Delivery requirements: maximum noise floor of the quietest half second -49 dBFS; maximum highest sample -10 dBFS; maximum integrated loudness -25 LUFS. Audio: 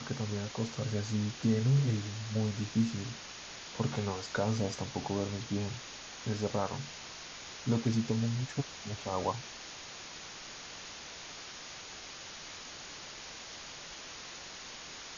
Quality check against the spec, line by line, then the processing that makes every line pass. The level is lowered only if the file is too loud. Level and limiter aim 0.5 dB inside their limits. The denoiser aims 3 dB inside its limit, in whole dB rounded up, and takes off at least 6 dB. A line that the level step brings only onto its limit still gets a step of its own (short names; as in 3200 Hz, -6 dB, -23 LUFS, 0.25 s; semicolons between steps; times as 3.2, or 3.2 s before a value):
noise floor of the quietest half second -47 dBFS: fail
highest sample -16.5 dBFS: OK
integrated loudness -36.0 LUFS: OK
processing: denoiser 6 dB, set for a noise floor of -47 dBFS